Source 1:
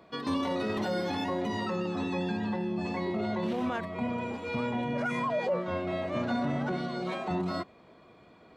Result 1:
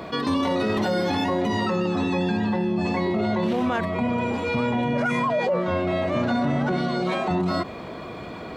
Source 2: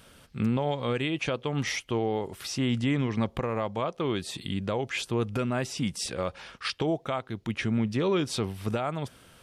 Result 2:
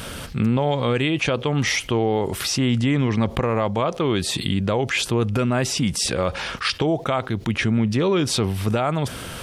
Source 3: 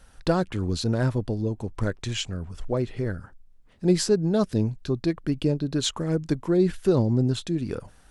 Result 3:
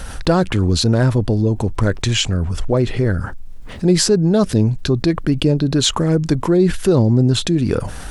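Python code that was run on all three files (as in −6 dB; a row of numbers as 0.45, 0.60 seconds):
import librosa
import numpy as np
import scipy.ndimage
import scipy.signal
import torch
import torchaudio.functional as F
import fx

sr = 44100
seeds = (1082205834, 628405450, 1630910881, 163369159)

y = fx.peak_eq(x, sr, hz=68.0, db=2.5, octaves=1.8)
y = fx.env_flatten(y, sr, amount_pct=50)
y = y * 10.0 ** (5.0 / 20.0)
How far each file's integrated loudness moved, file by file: +8.0, +8.0, +9.0 LU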